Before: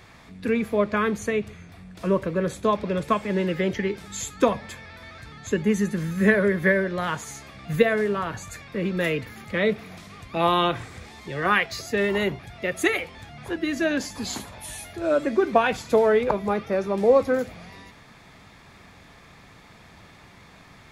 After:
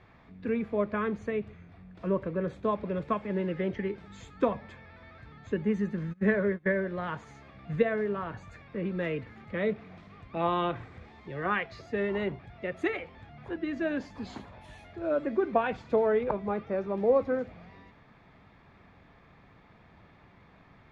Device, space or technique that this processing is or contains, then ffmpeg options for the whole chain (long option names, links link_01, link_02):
phone in a pocket: -filter_complex "[0:a]lowpass=3400,highshelf=frequency=2100:gain=-8,asplit=3[link_01][link_02][link_03];[link_01]afade=type=out:start_time=6.12:duration=0.02[link_04];[link_02]agate=range=-24dB:threshold=-22dB:ratio=16:detection=peak,afade=type=in:start_time=6.12:duration=0.02,afade=type=out:start_time=6.67:duration=0.02[link_05];[link_03]afade=type=in:start_time=6.67:duration=0.02[link_06];[link_04][link_05][link_06]amix=inputs=3:normalize=0,volume=-6dB"